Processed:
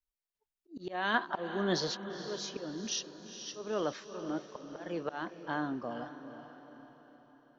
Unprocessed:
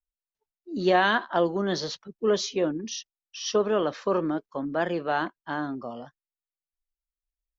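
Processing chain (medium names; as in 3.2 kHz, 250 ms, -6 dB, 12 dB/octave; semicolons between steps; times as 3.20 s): random-step tremolo; slow attack 360 ms; echo that smears into a reverb 463 ms, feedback 50%, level -11 dB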